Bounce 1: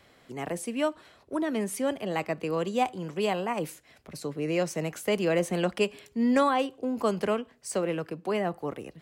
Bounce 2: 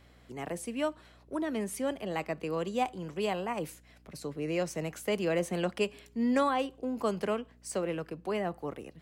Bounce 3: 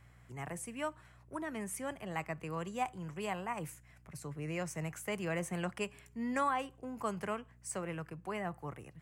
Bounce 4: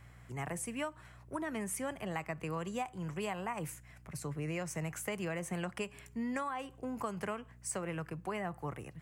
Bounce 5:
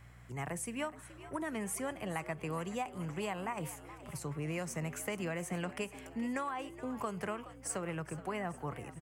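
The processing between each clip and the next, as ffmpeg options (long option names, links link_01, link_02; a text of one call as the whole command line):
ffmpeg -i in.wav -af "aeval=exprs='val(0)+0.00178*(sin(2*PI*60*n/s)+sin(2*PI*2*60*n/s)/2+sin(2*PI*3*60*n/s)/3+sin(2*PI*4*60*n/s)/4+sin(2*PI*5*60*n/s)/5)':channel_layout=same,volume=-4dB" out.wav
ffmpeg -i in.wav -af "equalizer=frequency=125:width_type=o:width=1:gain=9,equalizer=frequency=250:width_type=o:width=1:gain=-6,equalizer=frequency=500:width_type=o:width=1:gain=-6,equalizer=frequency=1000:width_type=o:width=1:gain=3,equalizer=frequency=2000:width_type=o:width=1:gain=4,equalizer=frequency=4000:width_type=o:width=1:gain=-10,equalizer=frequency=8000:width_type=o:width=1:gain=5,volume=-4dB" out.wav
ffmpeg -i in.wav -af "acompressor=threshold=-38dB:ratio=12,volume=4.5dB" out.wav
ffmpeg -i in.wav -filter_complex "[0:a]asplit=6[link_01][link_02][link_03][link_04][link_05][link_06];[link_02]adelay=423,afreqshift=90,volume=-15dB[link_07];[link_03]adelay=846,afreqshift=180,volume=-20dB[link_08];[link_04]adelay=1269,afreqshift=270,volume=-25.1dB[link_09];[link_05]adelay=1692,afreqshift=360,volume=-30.1dB[link_10];[link_06]adelay=2115,afreqshift=450,volume=-35.1dB[link_11];[link_01][link_07][link_08][link_09][link_10][link_11]amix=inputs=6:normalize=0" out.wav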